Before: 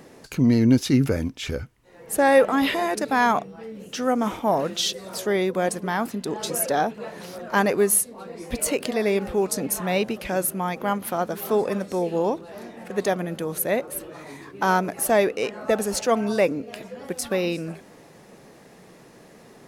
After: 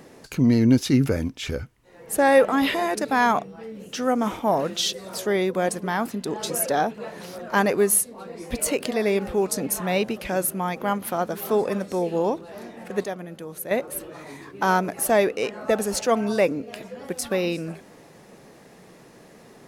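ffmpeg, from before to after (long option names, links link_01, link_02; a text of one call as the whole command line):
ffmpeg -i in.wav -filter_complex "[0:a]asplit=3[link_01][link_02][link_03];[link_01]atrim=end=13.042[link_04];[link_02]atrim=start=13.038:end=13.712,asetpts=PTS-STARTPTS,volume=-8dB[link_05];[link_03]atrim=start=13.708[link_06];[link_04][link_05]acrossfade=duration=0.004:curve1=hsin:curve2=hsin[link_07];[link_07][link_06]acrossfade=duration=0.004:curve1=hsin:curve2=hsin" out.wav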